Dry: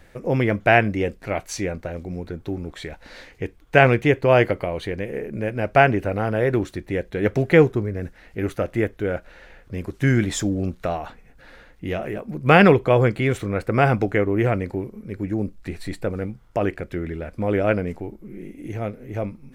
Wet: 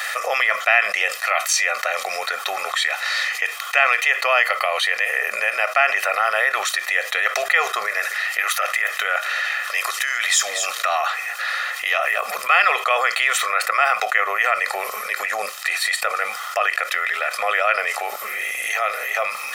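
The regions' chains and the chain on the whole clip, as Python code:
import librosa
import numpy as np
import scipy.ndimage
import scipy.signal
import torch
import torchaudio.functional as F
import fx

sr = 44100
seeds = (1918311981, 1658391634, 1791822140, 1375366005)

y = fx.chain(x, sr, fx.over_compress(threshold_db=-25.0, ratio=-1.0),
    fx.low_shelf(hz=470.0, db=-8.5),
    fx.echo_single(ms=236, db=-21.0), at=(7.87, 11.01))
y = scipy.signal.sosfilt(scipy.signal.butter(4, 1000.0, 'highpass', fs=sr, output='sos'), y)
y = y + 0.86 * np.pad(y, (int(1.6 * sr / 1000.0), 0))[:len(y)]
y = fx.env_flatten(y, sr, amount_pct=70)
y = y * librosa.db_to_amplitude(-1.0)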